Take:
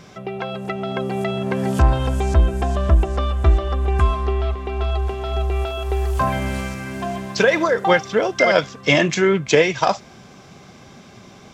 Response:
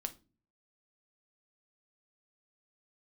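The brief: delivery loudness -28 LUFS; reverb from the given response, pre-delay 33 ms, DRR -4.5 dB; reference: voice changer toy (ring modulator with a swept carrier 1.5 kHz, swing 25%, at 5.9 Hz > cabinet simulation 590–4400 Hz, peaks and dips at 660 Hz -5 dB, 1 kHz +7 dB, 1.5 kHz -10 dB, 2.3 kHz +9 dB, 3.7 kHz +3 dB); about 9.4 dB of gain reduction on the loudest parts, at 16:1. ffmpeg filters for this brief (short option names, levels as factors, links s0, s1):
-filter_complex "[0:a]acompressor=threshold=0.126:ratio=16,asplit=2[s0][s1];[1:a]atrim=start_sample=2205,adelay=33[s2];[s1][s2]afir=irnorm=-1:irlink=0,volume=1.88[s3];[s0][s3]amix=inputs=2:normalize=0,aeval=exprs='val(0)*sin(2*PI*1500*n/s+1500*0.25/5.9*sin(2*PI*5.9*n/s))':c=same,highpass=590,equalizer=f=660:t=q:w=4:g=-5,equalizer=f=1000:t=q:w=4:g=7,equalizer=f=1500:t=q:w=4:g=-10,equalizer=f=2300:t=q:w=4:g=9,equalizer=f=3700:t=q:w=4:g=3,lowpass=f=4400:w=0.5412,lowpass=f=4400:w=1.3066,volume=0.316"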